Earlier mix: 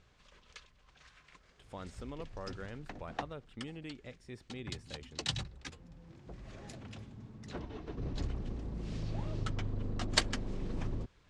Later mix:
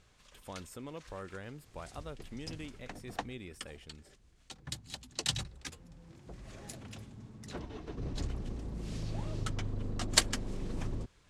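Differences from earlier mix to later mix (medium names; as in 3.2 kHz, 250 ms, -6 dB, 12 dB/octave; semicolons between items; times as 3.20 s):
speech: entry -1.25 s; master: remove distance through air 89 m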